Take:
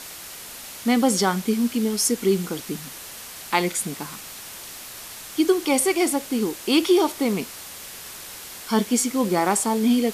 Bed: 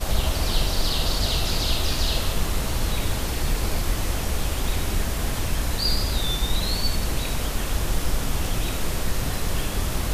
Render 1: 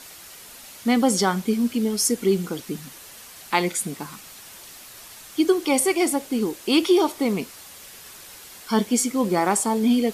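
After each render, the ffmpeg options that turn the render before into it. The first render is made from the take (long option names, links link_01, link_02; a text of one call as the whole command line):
ffmpeg -i in.wav -af "afftdn=noise_reduction=6:noise_floor=-39" out.wav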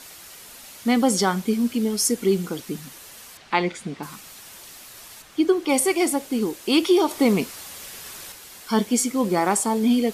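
ffmpeg -i in.wav -filter_complex "[0:a]asettb=1/sr,asplit=3[link_01][link_02][link_03];[link_01]atrim=end=3.374[link_04];[link_02]atrim=start=3.37:end=4.03,asetpts=PTS-STARTPTS,afade=type=in:duration=0.004:curve=qsin,afade=type=out:start_time=0.656:duration=0.004:curve=qsin,lowpass=3800[link_05];[link_03]atrim=start=4.026[link_06];[link_04][link_05]acrossfade=duration=0.004:curve1=hsin:curve2=qsin[link_07];[link_07][link_06]acrossfade=duration=0.004:curve1=qsin:curve2=hsin,asettb=1/sr,asplit=3[link_08][link_09][link_10];[link_08]atrim=end=5.224[link_11];[link_09]atrim=start=5.22:end=5.69,asetpts=PTS-STARTPTS,afade=type=in:duration=0.004:curve=qsin,afade=type=out:start_time=0.466:duration=0.004:curve=qsin,highshelf=frequency=4900:gain=-11.5[link_12];[link_10]atrim=start=5.686[link_13];[link_11][link_12]acrossfade=duration=0.004:curve1=hsin:curve2=qsin[link_14];[link_14][link_13]acrossfade=duration=0.004:curve1=qsin:curve2=hsin,asplit=3[link_15][link_16][link_17];[link_15]atrim=end=7.112[link_18];[link_16]atrim=start=7.108:end=8.322,asetpts=PTS-STARTPTS,volume=4.5dB[link_19];[link_17]atrim=start=8.318[link_20];[link_18][link_19]acrossfade=duration=0.004:curve1=hsin:curve2=hsin[link_21];[link_21][link_20]acrossfade=duration=0.004:curve1=hsin:curve2=hsin" out.wav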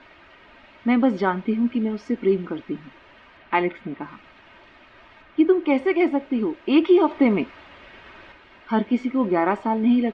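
ffmpeg -i in.wav -af "lowpass=frequency=2600:width=0.5412,lowpass=frequency=2600:width=1.3066,aecho=1:1:3.2:0.42" out.wav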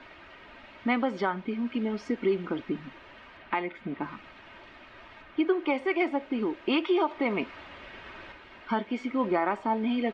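ffmpeg -i in.wav -filter_complex "[0:a]acrossover=split=510[link_01][link_02];[link_01]acompressor=threshold=-28dB:ratio=6[link_03];[link_03][link_02]amix=inputs=2:normalize=0,alimiter=limit=-15dB:level=0:latency=1:release=479" out.wav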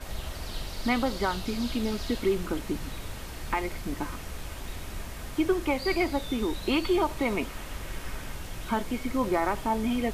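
ffmpeg -i in.wav -i bed.wav -filter_complex "[1:a]volume=-13.5dB[link_01];[0:a][link_01]amix=inputs=2:normalize=0" out.wav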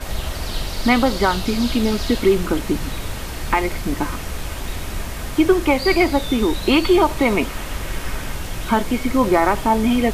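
ffmpeg -i in.wav -af "volume=10.5dB" out.wav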